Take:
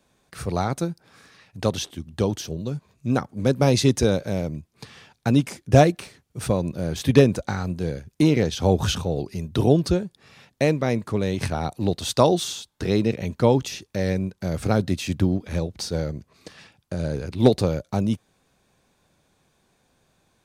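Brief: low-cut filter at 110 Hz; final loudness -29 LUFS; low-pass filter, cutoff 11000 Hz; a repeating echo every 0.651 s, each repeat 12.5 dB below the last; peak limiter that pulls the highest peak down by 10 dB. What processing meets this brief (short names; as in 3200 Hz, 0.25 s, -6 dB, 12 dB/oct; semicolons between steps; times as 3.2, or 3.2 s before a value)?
HPF 110 Hz; LPF 11000 Hz; limiter -11.5 dBFS; feedback echo 0.651 s, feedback 24%, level -12.5 dB; gain -3 dB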